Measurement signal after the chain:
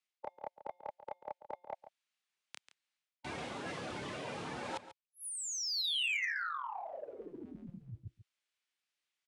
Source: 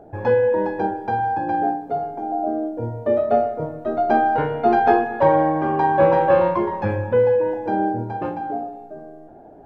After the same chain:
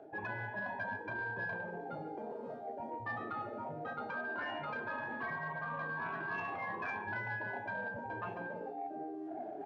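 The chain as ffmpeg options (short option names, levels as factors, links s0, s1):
-filter_complex "[0:a]asplit=2[s0][s1];[s1]adelay=28,volume=0.631[s2];[s0][s2]amix=inputs=2:normalize=0,alimiter=limit=0.211:level=0:latency=1:release=24,acrossover=split=240|1100[s3][s4][s5];[s3]acompressor=threshold=0.0224:ratio=4[s6];[s4]acompressor=threshold=0.1:ratio=4[s7];[s5]acompressor=threshold=0.0178:ratio=4[s8];[s6][s7][s8]amix=inputs=3:normalize=0,highpass=120,afftdn=nr=16:nf=-31,afftfilt=real='re*lt(hypot(re,im),0.112)':imag='im*lt(hypot(re,im),0.112)':win_size=1024:overlap=0.75,areverse,acompressor=threshold=0.00251:ratio=10,areverse,equalizer=f=2600:w=0.51:g=13.5,asplit=2[s9][s10];[s10]adelay=139.9,volume=0.2,highshelf=f=4000:g=-3.15[s11];[s9][s11]amix=inputs=2:normalize=0,aresample=22050,aresample=44100,asoftclip=type=tanh:threshold=0.0141,volume=2.99"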